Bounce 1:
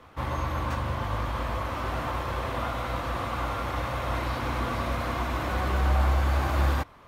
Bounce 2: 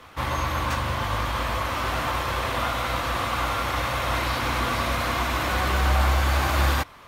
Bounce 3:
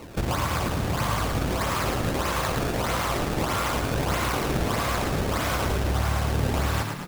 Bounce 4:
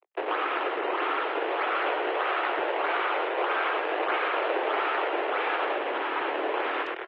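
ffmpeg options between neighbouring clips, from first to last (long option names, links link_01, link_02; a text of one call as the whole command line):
ffmpeg -i in.wav -af "tiltshelf=frequency=1400:gain=-5,volume=6.5dB" out.wav
ffmpeg -i in.wav -filter_complex "[0:a]acompressor=threshold=-29dB:ratio=6,acrusher=samples=25:mix=1:aa=0.000001:lfo=1:lforange=40:lforate=1.6,asplit=2[link_01][link_02];[link_02]asplit=7[link_03][link_04][link_05][link_06][link_07][link_08][link_09];[link_03]adelay=110,afreqshift=38,volume=-5dB[link_10];[link_04]adelay=220,afreqshift=76,volume=-10.2dB[link_11];[link_05]adelay=330,afreqshift=114,volume=-15.4dB[link_12];[link_06]adelay=440,afreqshift=152,volume=-20.6dB[link_13];[link_07]adelay=550,afreqshift=190,volume=-25.8dB[link_14];[link_08]adelay=660,afreqshift=228,volume=-31dB[link_15];[link_09]adelay=770,afreqshift=266,volume=-36.2dB[link_16];[link_10][link_11][link_12][link_13][link_14][link_15][link_16]amix=inputs=7:normalize=0[link_17];[link_01][link_17]amix=inputs=2:normalize=0,volume=5dB" out.wav
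ffmpeg -i in.wav -af "acrusher=bits=4:mix=0:aa=0.5,highpass=frequency=180:width_type=q:width=0.5412,highpass=frequency=180:width_type=q:width=1.307,lowpass=frequency=2800:width_type=q:width=0.5176,lowpass=frequency=2800:width_type=q:width=0.7071,lowpass=frequency=2800:width_type=q:width=1.932,afreqshift=190" -ar 44100 -c:a aac -b:a 32k out.aac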